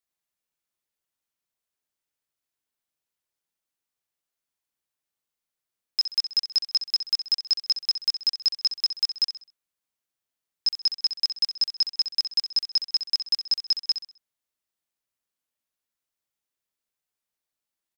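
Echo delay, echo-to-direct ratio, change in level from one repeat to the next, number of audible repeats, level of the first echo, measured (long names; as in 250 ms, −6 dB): 65 ms, −10.0 dB, −9.0 dB, 3, −10.5 dB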